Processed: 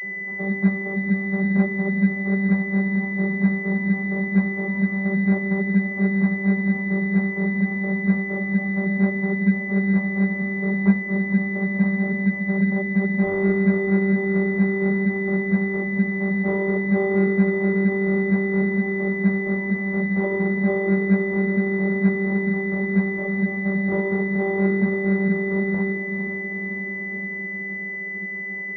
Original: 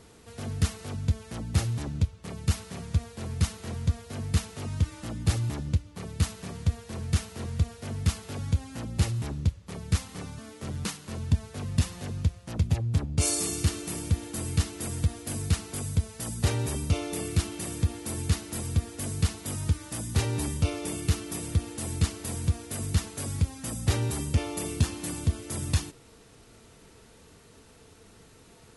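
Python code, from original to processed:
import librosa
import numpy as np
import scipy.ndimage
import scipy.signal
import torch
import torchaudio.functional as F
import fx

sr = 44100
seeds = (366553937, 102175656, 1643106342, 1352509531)

p1 = fx.echo_diffused(x, sr, ms=520, feedback_pct=65, wet_db=-10)
p2 = fx.over_compress(p1, sr, threshold_db=-28.0, ratio=-1.0)
p3 = p1 + F.gain(torch.from_numpy(p2), -2.0).numpy()
p4 = fx.vocoder(p3, sr, bands=32, carrier='saw', carrier_hz=195.0)
p5 = fx.pwm(p4, sr, carrier_hz=2000.0)
y = F.gain(torch.from_numpy(p5), 7.0).numpy()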